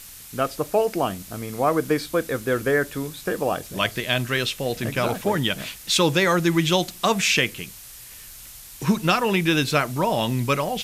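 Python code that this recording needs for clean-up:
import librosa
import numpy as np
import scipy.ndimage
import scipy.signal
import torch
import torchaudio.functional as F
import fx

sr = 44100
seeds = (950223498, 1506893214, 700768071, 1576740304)

y = fx.fix_declick_ar(x, sr, threshold=6.5)
y = fx.noise_reduce(y, sr, print_start_s=7.71, print_end_s=8.21, reduce_db=26.0)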